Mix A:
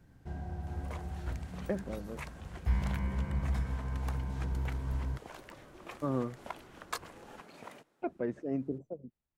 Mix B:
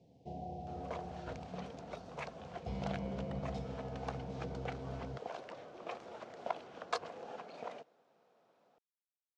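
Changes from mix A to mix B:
speech: muted
first sound: add Butterworth band-reject 1,400 Hz, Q 0.69
master: add loudspeaker in its box 160–6,000 Hz, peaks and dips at 320 Hz −4 dB, 480 Hz +8 dB, 700 Hz +10 dB, 1,900 Hz −4 dB

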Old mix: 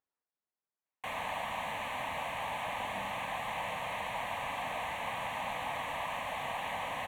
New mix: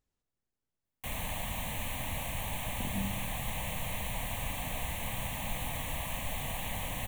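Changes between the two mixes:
background −7.5 dB
master: remove resonant band-pass 1,100 Hz, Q 1

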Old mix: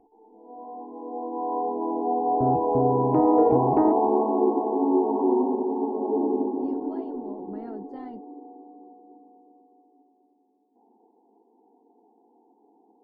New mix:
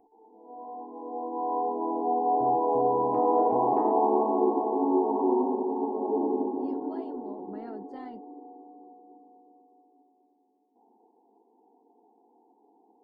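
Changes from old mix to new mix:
second sound −10.5 dB
master: add spectral tilt +2 dB per octave

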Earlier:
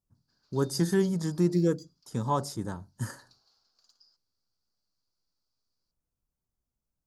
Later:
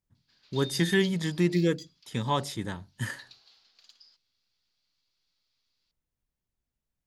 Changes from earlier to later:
background +4.5 dB
master: add flat-topped bell 2,600 Hz +15.5 dB 1.3 octaves

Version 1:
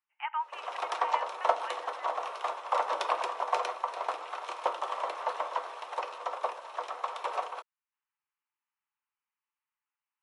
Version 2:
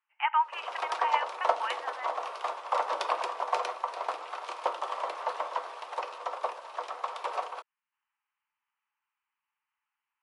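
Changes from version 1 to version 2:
speech +7.5 dB
background: remove notch filter 4,700 Hz, Q 12

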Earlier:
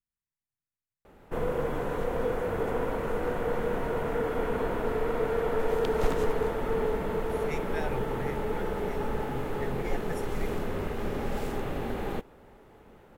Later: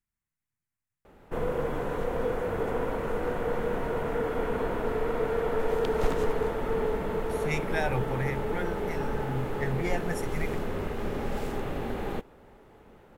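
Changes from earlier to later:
speech +8.0 dB
master: add high-shelf EQ 11,000 Hz −3 dB

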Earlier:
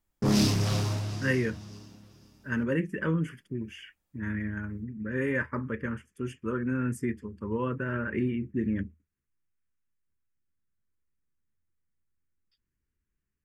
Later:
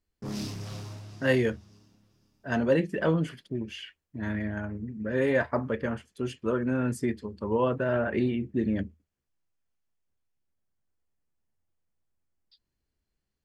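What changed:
speech: remove phaser with its sweep stopped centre 1,700 Hz, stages 4
background −11.5 dB

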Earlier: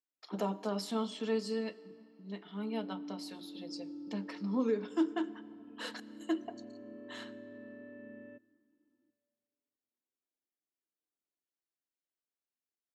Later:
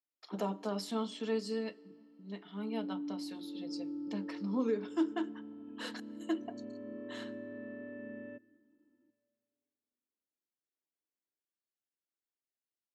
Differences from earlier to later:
speech: send −6.5 dB
background +4.5 dB

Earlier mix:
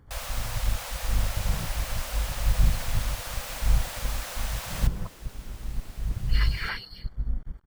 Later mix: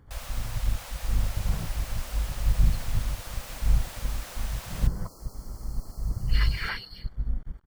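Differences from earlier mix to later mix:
first sound −5.5 dB
second sound: add linear-phase brick-wall band-stop 1,400–4,100 Hz

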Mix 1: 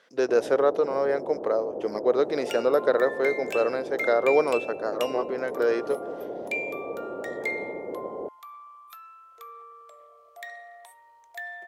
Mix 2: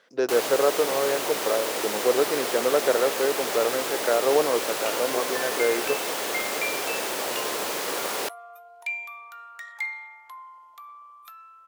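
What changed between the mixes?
first sound: remove inverse Chebyshev low-pass filter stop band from 2,100 Hz, stop band 60 dB
second sound: entry +2.35 s

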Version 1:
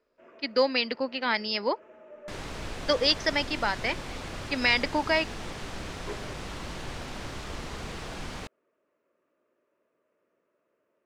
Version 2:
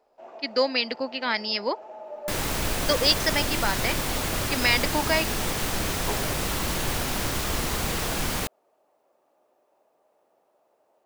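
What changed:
first sound: remove phaser with its sweep stopped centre 1,900 Hz, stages 4
second sound +9.0 dB
master: remove high-frequency loss of the air 82 metres

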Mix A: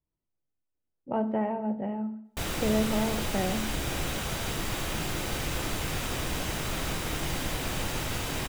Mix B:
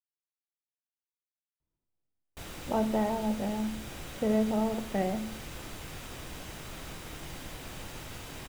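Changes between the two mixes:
speech: entry +1.60 s
background −11.0 dB

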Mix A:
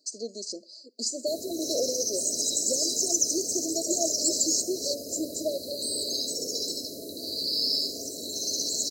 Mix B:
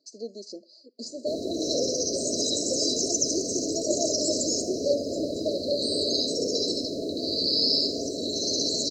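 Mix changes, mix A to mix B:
background +10.0 dB
master: add high-frequency loss of the air 170 metres

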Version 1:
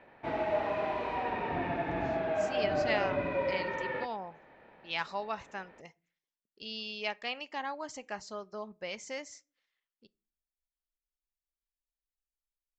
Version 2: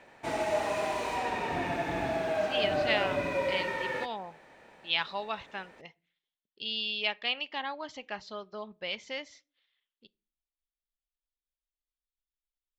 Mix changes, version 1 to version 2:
speech: add low-pass with resonance 3,500 Hz, resonance Q 3.7
background: remove high-frequency loss of the air 350 metres

